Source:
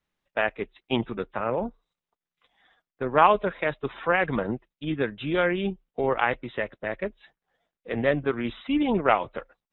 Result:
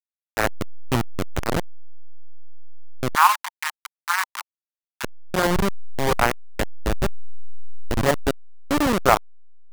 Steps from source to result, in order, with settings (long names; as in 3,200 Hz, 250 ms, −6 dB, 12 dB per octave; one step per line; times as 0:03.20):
hold until the input has moved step −16.5 dBFS
0:03.15–0:05.04: Chebyshev high-pass filter 900 Hz, order 5
dynamic equaliser 1,100 Hz, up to +4 dB, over −34 dBFS, Q 1
level +3 dB